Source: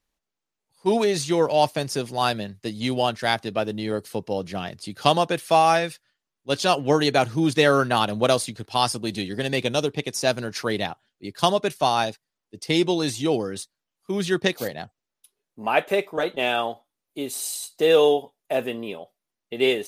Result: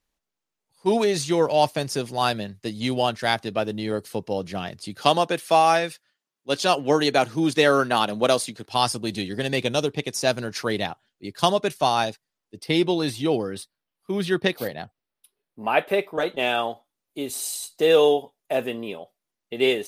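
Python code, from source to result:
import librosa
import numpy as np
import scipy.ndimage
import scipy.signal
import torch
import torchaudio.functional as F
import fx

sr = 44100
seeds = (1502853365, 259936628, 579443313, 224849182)

y = fx.highpass(x, sr, hz=170.0, slope=12, at=(5.01, 8.69))
y = fx.peak_eq(y, sr, hz=6800.0, db=-11.0, octaves=0.55, at=(12.57, 16.18))
y = fx.low_shelf(y, sr, hz=190.0, db=7.5, at=(17.29, 17.75))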